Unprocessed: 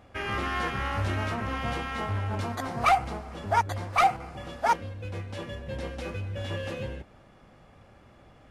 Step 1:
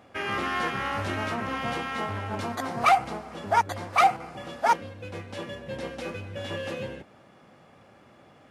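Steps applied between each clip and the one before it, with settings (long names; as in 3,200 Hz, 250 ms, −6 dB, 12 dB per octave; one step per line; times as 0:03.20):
high-pass filter 150 Hz 12 dB per octave
level +2 dB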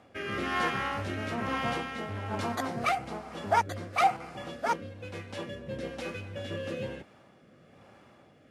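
rotating-speaker cabinet horn 1.1 Hz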